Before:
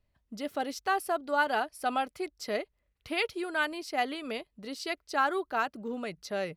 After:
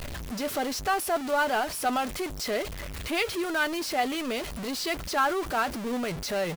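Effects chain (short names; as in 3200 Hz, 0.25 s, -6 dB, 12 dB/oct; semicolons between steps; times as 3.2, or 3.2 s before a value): zero-crossing step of -30 dBFS; doubler 12 ms -13 dB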